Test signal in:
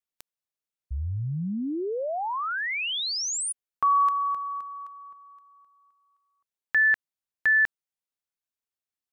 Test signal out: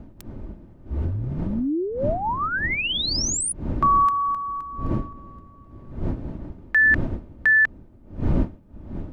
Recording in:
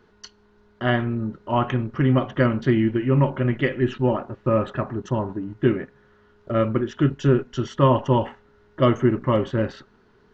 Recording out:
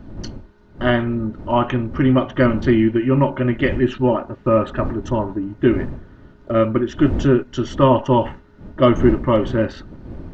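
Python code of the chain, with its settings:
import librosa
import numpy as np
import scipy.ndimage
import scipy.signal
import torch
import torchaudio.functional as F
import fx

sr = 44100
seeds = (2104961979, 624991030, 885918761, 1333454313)

y = fx.dmg_wind(x, sr, seeds[0], corner_hz=180.0, level_db=-34.0)
y = y + 0.36 * np.pad(y, (int(3.3 * sr / 1000.0), 0))[:len(y)]
y = F.gain(torch.from_numpy(y), 3.5).numpy()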